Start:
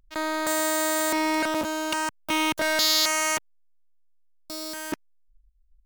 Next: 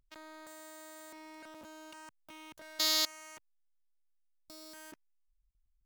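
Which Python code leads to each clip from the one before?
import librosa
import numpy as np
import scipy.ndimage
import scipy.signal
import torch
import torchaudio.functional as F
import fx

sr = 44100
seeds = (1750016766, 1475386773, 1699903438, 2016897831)

y = fx.level_steps(x, sr, step_db=22)
y = y * 10.0 ** (-7.0 / 20.0)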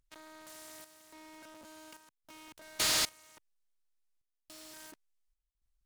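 y = fx.peak_eq(x, sr, hz=8300.0, db=10.0, octaves=1.0)
y = fx.chopper(y, sr, hz=0.89, depth_pct=65, duty_pct=75)
y = fx.noise_mod_delay(y, sr, seeds[0], noise_hz=2100.0, depth_ms=0.03)
y = y * 10.0 ** (-2.5 / 20.0)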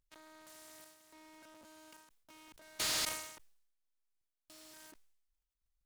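y = fx.sustainer(x, sr, db_per_s=65.0)
y = y * 10.0 ** (-5.5 / 20.0)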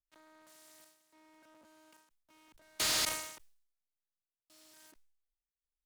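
y = fx.band_widen(x, sr, depth_pct=70)
y = y * 10.0 ** (-3.0 / 20.0)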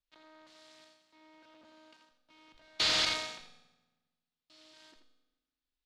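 y = fx.lowpass_res(x, sr, hz=4000.0, q=2.1)
y = y + 10.0 ** (-9.0 / 20.0) * np.pad(y, (int(83 * sr / 1000.0), 0))[:len(y)]
y = fx.rev_fdn(y, sr, rt60_s=1.2, lf_ratio=1.35, hf_ratio=0.8, size_ms=12.0, drr_db=7.5)
y = y * 10.0 ** (1.0 / 20.0)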